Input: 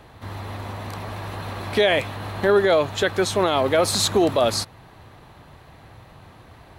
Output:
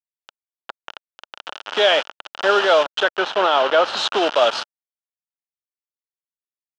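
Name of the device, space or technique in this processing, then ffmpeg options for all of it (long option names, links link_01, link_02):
hand-held game console: -filter_complex "[0:a]acrusher=bits=3:mix=0:aa=0.000001,highpass=490,equalizer=frequency=600:width_type=q:width=4:gain=3,equalizer=frequency=870:width_type=q:width=4:gain=4,equalizer=frequency=1400:width_type=q:width=4:gain=8,equalizer=frequency=2100:width_type=q:width=4:gain=-7,equalizer=frequency=3000:width_type=q:width=4:gain=8,equalizer=frequency=4400:width_type=q:width=4:gain=-5,lowpass=frequency=4600:width=0.5412,lowpass=frequency=4600:width=1.3066,asettb=1/sr,asplit=3[link_01][link_02][link_03];[link_01]atrim=end=3.034[link_04];[link_02]atrim=start=3.03:end=3.97,asetpts=PTS-STARTPTS,afade=type=in:duration=0.004:curve=qsin,afade=type=out:start_time=0.936:duration=0.004:curve=qsin,aemphasis=mode=reproduction:type=50fm[link_05];[link_03]atrim=start=3.966[link_06];[link_04][link_05]acrossfade=duration=0.004:curve1=hsin:curve2=qsin[link_07];[link_07][link_06]acrossfade=duration=0.004:curve1=qsin:curve2=hsin,highpass=88,highshelf=frequency=7600:gain=6,volume=1.5dB"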